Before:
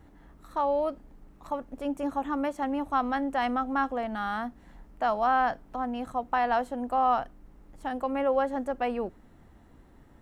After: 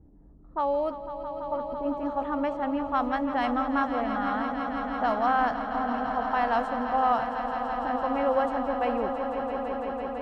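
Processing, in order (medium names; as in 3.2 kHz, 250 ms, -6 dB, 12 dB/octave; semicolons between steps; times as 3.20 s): level-controlled noise filter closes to 390 Hz, open at -21.5 dBFS; echo with a slow build-up 167 ms, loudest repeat 5, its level -11 dB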